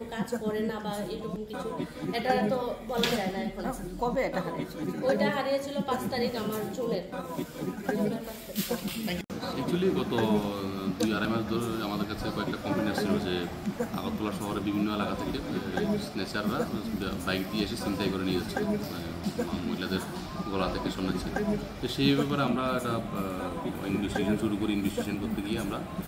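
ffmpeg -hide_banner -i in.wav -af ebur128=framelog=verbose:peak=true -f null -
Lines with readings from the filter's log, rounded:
Integrated loudness:
  I:         -30.8 LUFS
  Threshold: -40.8 LUFS
Loudness range:
  LRA:         2.4 LU
  Threshold: -50.7 LUFS
  LRA low:   -32.0 LUFS
  LRA high:  -29.6 LUFS
True peak:
  Peak:       -9.2 dBFS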